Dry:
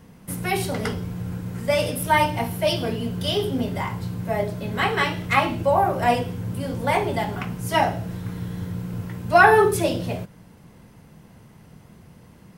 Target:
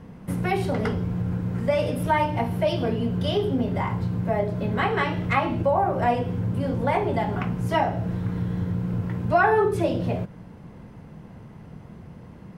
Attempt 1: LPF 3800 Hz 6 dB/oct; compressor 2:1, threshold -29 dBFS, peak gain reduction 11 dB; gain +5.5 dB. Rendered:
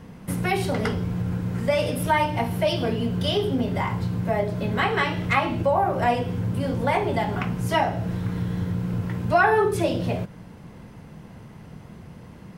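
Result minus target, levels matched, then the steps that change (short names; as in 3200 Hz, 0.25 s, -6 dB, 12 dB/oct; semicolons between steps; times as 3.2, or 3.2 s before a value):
4000 Hz band +4.5 dB
change: LPF 1400 Hz 6 dB/oct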